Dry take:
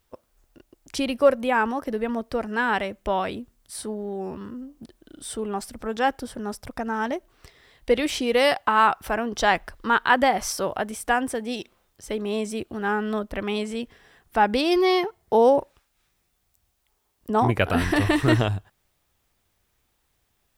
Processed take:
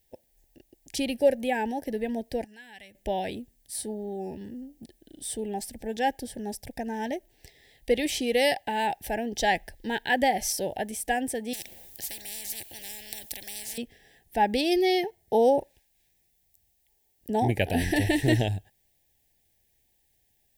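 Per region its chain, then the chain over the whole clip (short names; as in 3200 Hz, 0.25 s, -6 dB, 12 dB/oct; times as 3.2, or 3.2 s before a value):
2.44–2.95 compressor 2.5:1, threshold -26 dBFS + passive tone stack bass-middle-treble 5-5-5
11.53–13.78 high shelf 7700 Hz +6 dB + spectral compressor 10:1
whole clip: elliptic band-stop 850–1700 Hz, stop band 60 dB; high shelf 9000 Hz +9.5 dB; gain -3 dB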